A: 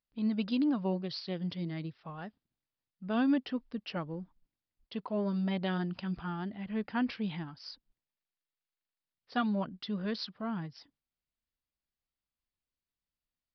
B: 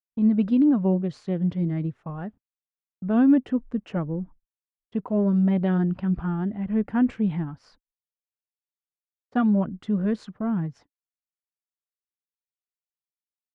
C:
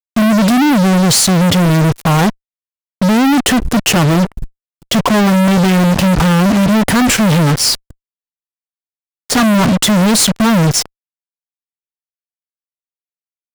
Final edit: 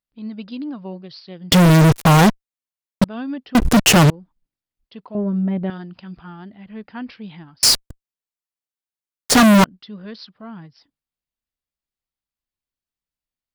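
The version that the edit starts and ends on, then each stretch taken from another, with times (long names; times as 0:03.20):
A
0:01.52–0:03.04: punch in from C
0:03.55–0:04.10: punch in from C
0:05.15–0:05.70: punch in from B
0:07.63–0:09.64: punch in from C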